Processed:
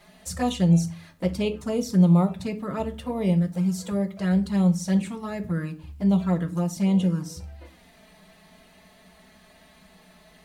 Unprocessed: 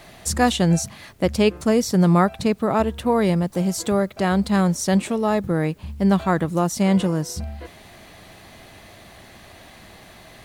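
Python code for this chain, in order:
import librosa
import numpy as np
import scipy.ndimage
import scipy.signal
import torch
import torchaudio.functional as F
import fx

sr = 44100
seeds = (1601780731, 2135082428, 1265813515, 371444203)

y = fx.env_flanger(x, sr, rest_ms=5.2, full_db=-14.0)
y = fx.rev_fdn(y, sr, rt60_s=0.38, lf_ratio=1.4, hf_ratio=0.75, size_ms=33.0, drr_db=6.0)
y = y * 10.0 ** (-7.0 / 20.0)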